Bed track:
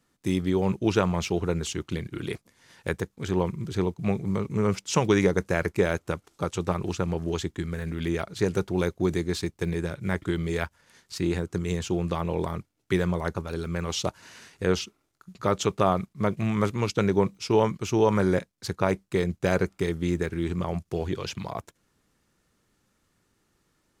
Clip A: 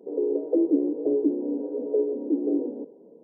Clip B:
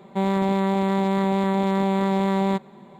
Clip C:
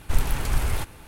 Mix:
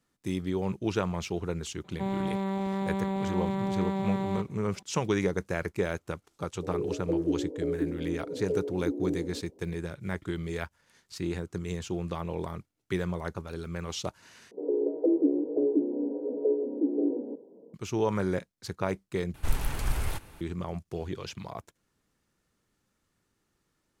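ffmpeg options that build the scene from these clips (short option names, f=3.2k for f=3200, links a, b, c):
-filter_complex "[1:a]asplit=2[a][b];[0:a]volume=-6dB[c];[2:a]equalizer=f=73:w=0.74:g=8.5[d];[c]asplit=3[e][f][g];[e]atrim=end=14.514[h];[b]atrim=end=3.23,asetpts=PTS-STARTPTS,volume=-2.5dB[i];[f]atrim=start=17.736:end=19.344[j];[3:a]atrim=end=1.07,asetpts=PTS-STARTPTS,volume=-5.5dB[k];[g]atrim=start=20.406[l];[d]atrim=end=2.99,asetpts=PTS-STARTPTS,volume=-10.5dB,afade=t=in:d=0.004:c=hsin,afade=t=out:st=2.986:d=0.004:c=hsin,adelay=1840[m];[a]atrim=end=3.23,asetpts=PTS-STARTPTS,volume=-7dB,afade=t=in:d=0.004:c=hsin,afade=t=out:st=3.226:d=0.004:c=hsin,adelay=6560[n];[h][i]acrossfade=d=0.004:c1=hsin:c2=hsin[o];[o][j]acrossfade=d=0.004:c1=hsin:c2=hsin[p];[p][k]acrossfade=d=0.004:c1=hsin:c2=hsin[q];[q][l]acrossfade=d=0.004:c1=hsin:c2=hsin[r];[r][m][n]amix=inputs=3:normalize=0"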